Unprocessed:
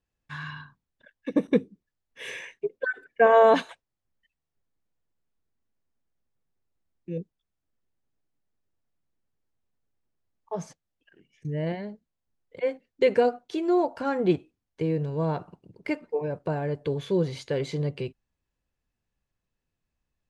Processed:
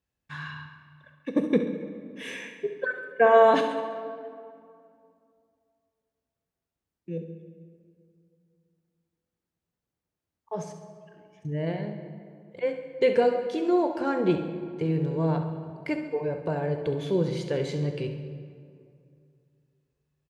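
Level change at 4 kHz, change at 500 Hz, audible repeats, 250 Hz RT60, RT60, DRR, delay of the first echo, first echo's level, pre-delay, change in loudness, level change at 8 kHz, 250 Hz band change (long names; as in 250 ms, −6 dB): 0.0 dB, 0.0 dB, 3, 2.7 s, 2.4 s, 6.0 dB, 68 ms, −11.0 dB, 17 ms, −0.5 dB, can't be measured, +0.5 dB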